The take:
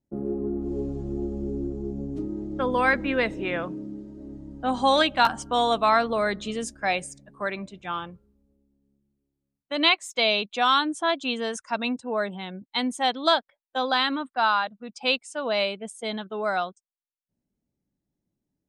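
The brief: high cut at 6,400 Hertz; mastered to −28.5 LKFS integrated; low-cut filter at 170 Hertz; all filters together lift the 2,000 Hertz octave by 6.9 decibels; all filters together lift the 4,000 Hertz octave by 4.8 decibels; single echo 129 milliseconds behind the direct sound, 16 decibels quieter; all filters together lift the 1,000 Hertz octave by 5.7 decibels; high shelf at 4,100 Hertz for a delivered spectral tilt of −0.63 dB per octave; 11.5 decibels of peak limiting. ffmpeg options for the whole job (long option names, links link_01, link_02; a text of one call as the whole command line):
ffmpeg -i in.wav -af "highpass=170,lowpass=6400,equalizer=frequency=1000:width_type=o:gain=5.5,equalizer=frequency=2000:width_type=o:gain=7,equalizer=frequency=4000:width_type=o:gain=6.5,highshelf=frequency=4100:gain=-6,alimiter=limit=-13.5dB:level=0:latency=1,aecho=1:1:129:0.158,volume=-2.5dB" out.wav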